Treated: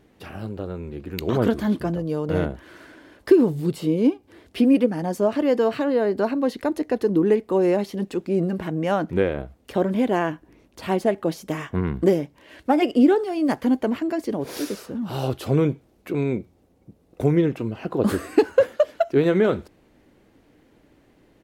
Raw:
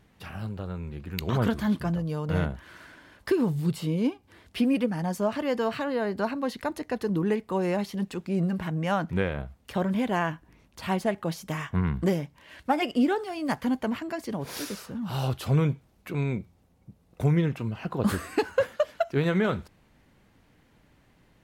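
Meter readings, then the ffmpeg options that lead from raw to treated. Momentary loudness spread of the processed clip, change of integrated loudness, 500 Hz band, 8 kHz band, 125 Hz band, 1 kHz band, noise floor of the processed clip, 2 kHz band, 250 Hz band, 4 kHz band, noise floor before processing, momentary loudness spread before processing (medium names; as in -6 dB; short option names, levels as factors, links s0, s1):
13 LU, +6.0 dB, +8.5 dB, +1.0 dB, +0.5 dB, +3.0 dB, -59 dBFS, +1.0 dB, +6.0 dB, +1.0 dB, -62 dBFS, 11 LU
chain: -af "firequalizer=gain_entry='entry(170,0);entry(310,11);entry(950,1)':delay=0.05:min_phase=1"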